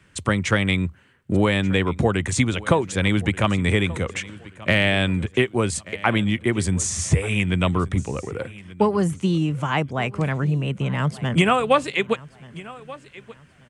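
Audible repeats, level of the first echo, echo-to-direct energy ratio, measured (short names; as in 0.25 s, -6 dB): 2, -19.5 dB, -19.0 dB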